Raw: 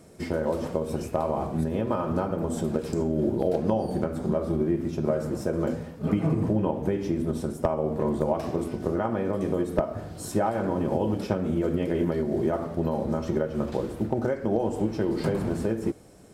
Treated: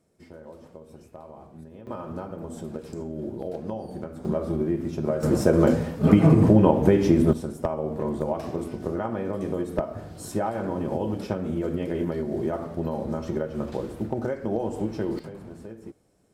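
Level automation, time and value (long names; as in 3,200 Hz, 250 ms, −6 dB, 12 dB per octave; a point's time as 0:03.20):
−17.5 dB
from 0:01.87 −8 dB
from 0:04.25 −0.5 dB
from 0:05.23 +8.5 dB
from 0:07.33 −2 dB
from 0:15.19 −14 dB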